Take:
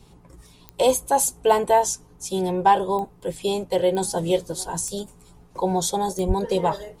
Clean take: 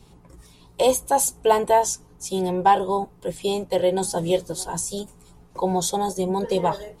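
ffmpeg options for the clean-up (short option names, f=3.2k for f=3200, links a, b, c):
-filter_complex "[0:a]adeclick=t=4,asplit=3[a][b][c];[a]afade=t=out:st=6.27:d=0.02[d];[b]highpass=f=140:w=0.5412,highpass=f=140:w=1.3066,afade=t=in:st=6.27:d=0.02,afade=t=out:st=6.39:d=0.02[e];[c]afade=t=in:st=6.39:d=0.02[f];[d][e][f]amix=inputs=3:normalize=0"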